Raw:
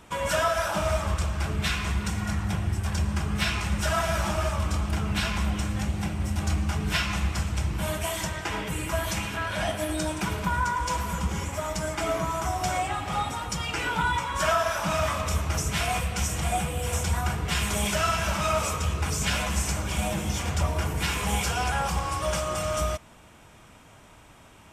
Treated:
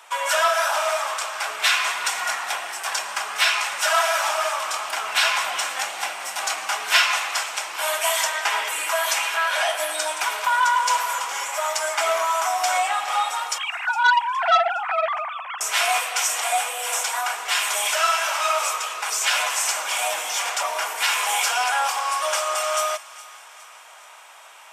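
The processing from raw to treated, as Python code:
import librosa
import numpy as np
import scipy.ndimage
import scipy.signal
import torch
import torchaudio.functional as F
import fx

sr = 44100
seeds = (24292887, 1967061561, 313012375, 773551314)

y = fx.sine_speech(x, sr, at=(13.58, 15.61))
y = scipy.signal.sosfilt(scipy.signal.butter(4, 690.0, 'highpass', fs=sr, output='sos'), y)
y = fx.rider(y, sr, range_db=5, speed_s=2.0)
y = fx.echo_wet_highpass(y, sr, ms=413, feedback_pct=52, hz=1400.0, wet_db=-18)
y = fx.transformer_sat(y, sr, knee_hz=2100.0)
y = y * 10.0 ** (8.0 / 20.0)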